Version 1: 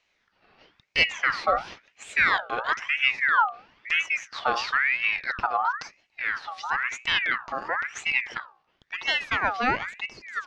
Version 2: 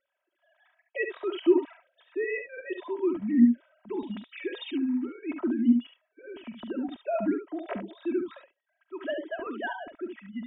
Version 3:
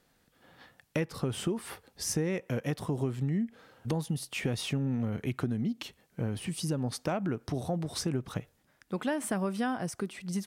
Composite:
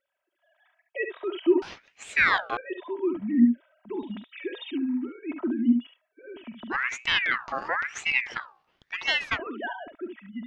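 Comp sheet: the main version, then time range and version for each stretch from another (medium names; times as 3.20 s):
2
1.62–2.57 s: from 1
6.73–9.36 s: from 1, crossfade 0.06 s
not used: 3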